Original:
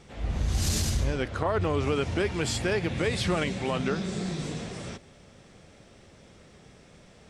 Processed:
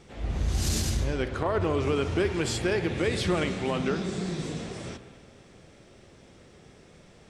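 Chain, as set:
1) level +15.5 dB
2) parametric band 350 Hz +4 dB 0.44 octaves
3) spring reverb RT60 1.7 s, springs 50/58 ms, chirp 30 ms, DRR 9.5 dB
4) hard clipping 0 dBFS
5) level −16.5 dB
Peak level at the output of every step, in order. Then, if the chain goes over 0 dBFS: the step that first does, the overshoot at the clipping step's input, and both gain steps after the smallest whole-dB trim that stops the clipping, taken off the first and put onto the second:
+1.0, +2.0, +3.0, 0.0, −16.5 dBFS
step 1, 3.0 dB
step 1 +12.5 dB, step 5 −13.5 dB

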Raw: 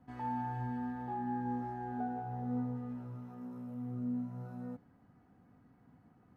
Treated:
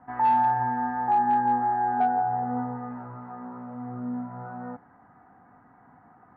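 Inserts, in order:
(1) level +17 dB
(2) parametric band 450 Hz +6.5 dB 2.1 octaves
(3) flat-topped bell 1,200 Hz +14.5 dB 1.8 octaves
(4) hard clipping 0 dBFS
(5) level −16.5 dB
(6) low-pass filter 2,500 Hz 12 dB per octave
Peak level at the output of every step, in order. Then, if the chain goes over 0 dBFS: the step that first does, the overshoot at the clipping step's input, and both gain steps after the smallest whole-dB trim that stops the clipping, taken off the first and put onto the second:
−10.0, −6.0, +3.0, 0.0, −16.5, −16.0 dBFS
step 3, 3.0 dB
step 1 +14 dB, step 5 −13.5 dB

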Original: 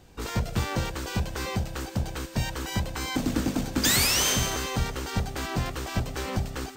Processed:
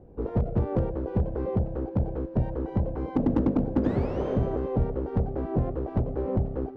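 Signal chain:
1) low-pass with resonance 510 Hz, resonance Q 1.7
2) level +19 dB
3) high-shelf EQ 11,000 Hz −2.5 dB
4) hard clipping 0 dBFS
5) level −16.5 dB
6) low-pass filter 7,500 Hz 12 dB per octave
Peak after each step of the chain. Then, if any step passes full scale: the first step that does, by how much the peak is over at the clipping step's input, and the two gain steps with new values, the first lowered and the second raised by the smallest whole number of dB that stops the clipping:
−12.5, +6.5, +6.5, 0.0, −16.5, −16.5 dBFS
step 2, 6.5 dB
step 2 +12 dB, step 5 −9.5 dB

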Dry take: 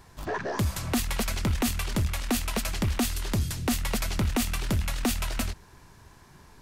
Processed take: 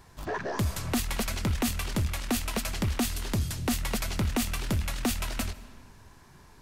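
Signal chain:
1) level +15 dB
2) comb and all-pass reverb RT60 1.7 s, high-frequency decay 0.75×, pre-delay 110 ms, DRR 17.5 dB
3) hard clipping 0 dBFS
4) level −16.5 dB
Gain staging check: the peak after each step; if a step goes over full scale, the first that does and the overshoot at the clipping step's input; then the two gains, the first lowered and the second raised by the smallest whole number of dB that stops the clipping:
−5.5, −4.0, −4.0, −20.5 dBFS
no step passes full scale

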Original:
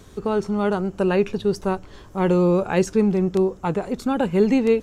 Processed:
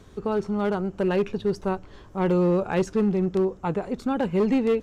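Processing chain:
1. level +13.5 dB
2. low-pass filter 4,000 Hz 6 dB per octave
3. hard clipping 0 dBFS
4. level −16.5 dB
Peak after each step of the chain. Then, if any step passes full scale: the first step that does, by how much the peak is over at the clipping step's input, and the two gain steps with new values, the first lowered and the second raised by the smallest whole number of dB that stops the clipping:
+6.0, +6.0, 0.0, −16.5 dBFS
step 1, 6.0 dB
step 1 +7.5 dB, step 4 −10.5 dB

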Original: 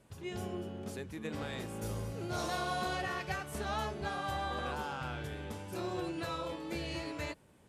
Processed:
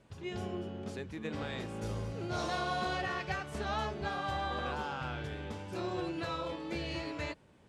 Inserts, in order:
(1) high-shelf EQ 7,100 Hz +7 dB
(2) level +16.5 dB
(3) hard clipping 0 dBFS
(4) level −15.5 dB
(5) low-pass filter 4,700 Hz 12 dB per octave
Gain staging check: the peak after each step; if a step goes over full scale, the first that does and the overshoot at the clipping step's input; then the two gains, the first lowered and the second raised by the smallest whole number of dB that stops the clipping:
−22.0, −5.5, −5.5, −21.0, −21.5 dBFS
no step passes full scale

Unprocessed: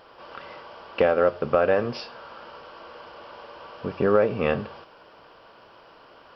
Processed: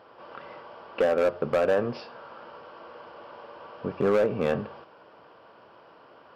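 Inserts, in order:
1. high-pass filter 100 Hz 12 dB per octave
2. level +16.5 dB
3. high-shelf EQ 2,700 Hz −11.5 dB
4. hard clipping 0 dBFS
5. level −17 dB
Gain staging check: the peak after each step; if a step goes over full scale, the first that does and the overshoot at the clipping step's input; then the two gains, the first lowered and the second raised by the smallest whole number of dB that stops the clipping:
−6.5, +10.0, +9.0, 0.0, −17.0 dBFS
step 2, 9.0 dB
step 2 +7.5 dB, step 5 −8 dB

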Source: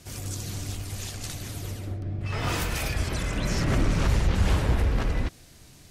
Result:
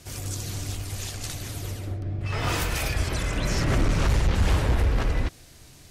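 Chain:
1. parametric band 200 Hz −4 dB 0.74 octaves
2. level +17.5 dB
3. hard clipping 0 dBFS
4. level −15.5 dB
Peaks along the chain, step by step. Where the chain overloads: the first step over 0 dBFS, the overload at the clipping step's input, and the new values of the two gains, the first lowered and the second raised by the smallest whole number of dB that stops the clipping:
−14.0, +3.5, 0.0, −15.5 dBFS
step 2, 3.5 dB
step 2 +13.5 dB, step 4 −11.5 dB

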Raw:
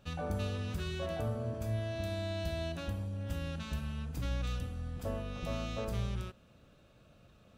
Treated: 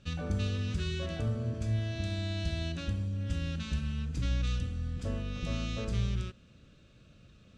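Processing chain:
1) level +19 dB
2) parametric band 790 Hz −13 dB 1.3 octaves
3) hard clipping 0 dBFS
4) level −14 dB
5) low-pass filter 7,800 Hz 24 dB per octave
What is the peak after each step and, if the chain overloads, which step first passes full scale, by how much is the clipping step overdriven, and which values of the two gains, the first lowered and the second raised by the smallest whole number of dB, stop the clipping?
−5.0, −6.0, −6.0, −20.0, −20.0 dBFS
no step passes full scale

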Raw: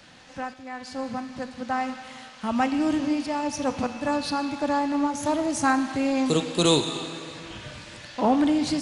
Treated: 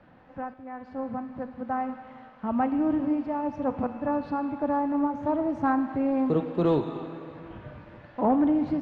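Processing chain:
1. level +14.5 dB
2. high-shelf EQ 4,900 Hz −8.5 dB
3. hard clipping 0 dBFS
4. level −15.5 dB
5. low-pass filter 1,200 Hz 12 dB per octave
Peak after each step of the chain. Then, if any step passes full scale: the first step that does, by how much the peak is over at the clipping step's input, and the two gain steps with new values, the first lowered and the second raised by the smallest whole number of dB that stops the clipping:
+5.5, +4.5, 0.0, −15.5, −15.0 dBFS
step 1, 4.5 dB
step 1 +9.5 dB, step 4 −10.5 dB

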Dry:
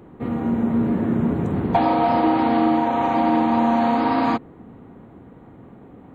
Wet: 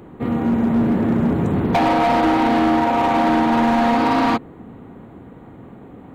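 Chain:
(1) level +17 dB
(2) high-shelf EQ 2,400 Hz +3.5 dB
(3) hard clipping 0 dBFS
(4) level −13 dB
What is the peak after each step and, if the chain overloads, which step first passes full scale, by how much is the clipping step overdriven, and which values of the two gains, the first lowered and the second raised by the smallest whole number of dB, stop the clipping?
+9.5, +9.5, 0.0, −13.0 dBFS
step 1, 9.5 dB
step 1 +7 dB, step 4 −3 dB

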